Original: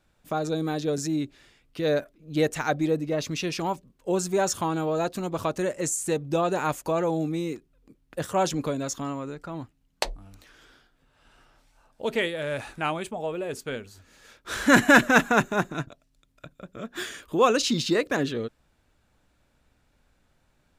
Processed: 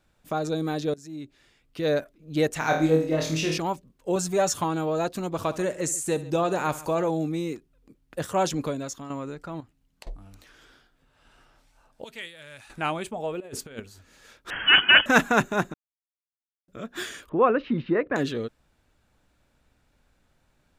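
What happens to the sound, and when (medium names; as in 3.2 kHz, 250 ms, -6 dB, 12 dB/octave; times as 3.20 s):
0.94–1.86 s: fade in, from -22 dB
2.59–3.58 s: flutter echo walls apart 4.3 m, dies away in 0.47 s
4.15–4.64 s: comb 6.8 ms, depth 52%
5.32–7.09 s: multi-tap echo 66/138 ms -16.5/-19.5 dB
8.62–9.10 s: fade out, to -9 dB
9.60–10.07 s: compression 10:1, threshold -44 dBFS
12.04–12.70 s: amplifier tone stack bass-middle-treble 5-5-5
13.40–13.80 s: compressor with a negative ratio -37 dBFS, ratio -0.5
14.50–15.06 s: frequency inversion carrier 3.2 kHz
15.74–16.68 s: mute
17.29–18.16 s: inverse Chebyshev low-pass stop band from 8.2 kHz, stop band 70 dB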